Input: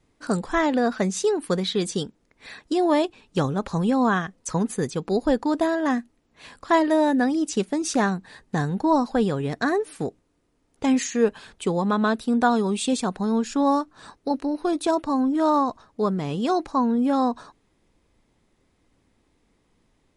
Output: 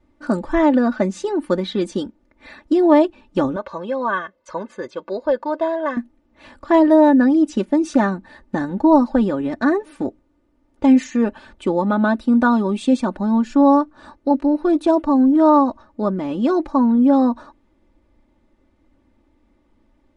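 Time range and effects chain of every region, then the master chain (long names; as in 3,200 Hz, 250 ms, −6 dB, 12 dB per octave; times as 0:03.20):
0:03.56–0:05.97: high-pass filter 710 Hz 6 dB per octave + high-frequency loss of the air 110 metres + comb filter 1.9 ms, depth 60%
whole clip: low-pass filter 1,200 Hz 6 dB per octave; comb filter 3.4 ms, depth 79%; level +4 dB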